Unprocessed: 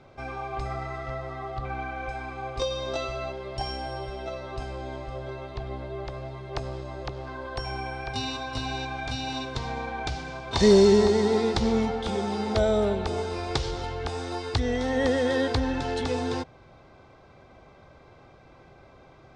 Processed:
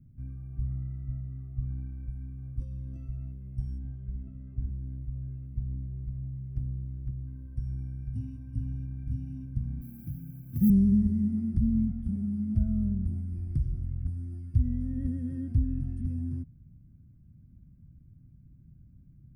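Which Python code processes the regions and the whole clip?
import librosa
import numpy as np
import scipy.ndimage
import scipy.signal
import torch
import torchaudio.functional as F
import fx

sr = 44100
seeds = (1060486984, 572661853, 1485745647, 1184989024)

y = fx.chain(x, sr, fx.lowpass(hz=3200.0, slope=24),
    fx.room_flutter(wall_m=11.3, rt60_s=0.87), at=(3.78, 4.7))
y = fx.chain(y, sr, fx.highpass(hz=99.0, slope=24),
    fx.mod_noise(seeds[0], snr_db=23), at=(9.81, 10.7))
y = scipy.signal.sosfilt(scipy.signal.cheby2(4, 40, [410.0, 7700.0], 'bandstop', fs=sr, output='sos'), y)
y = fx.dynamic_eq(y, sr, hz=840.0, q=1.1, threshold_db=-55.0, ratio=4.0, max_db=5)
y = F.gain(torch.from_numpy(y), 3.5).numpy()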